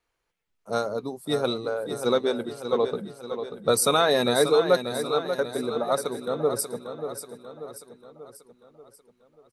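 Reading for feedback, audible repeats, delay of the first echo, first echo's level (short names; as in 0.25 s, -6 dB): 51%, 5, 0.587 s, -9.0 dB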